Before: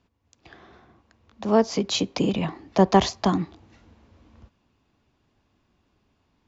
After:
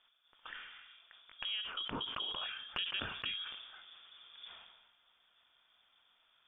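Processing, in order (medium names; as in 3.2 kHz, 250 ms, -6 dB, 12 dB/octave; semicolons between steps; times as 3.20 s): peaking EQ 2.1 kHz +14 dB 0.53 oct; frequency inversion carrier 3.5 kHz; compression 8:1, threshold -33 dBFS, peak gain reduction 21.5 dB; peaking EQ 100 Hz -9.5 dB 2.9 oct, from 1.81 s +2.5 dB, from 3.42 s -5.5 dB; decay stretcher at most 45 dB/s; trim -5 dB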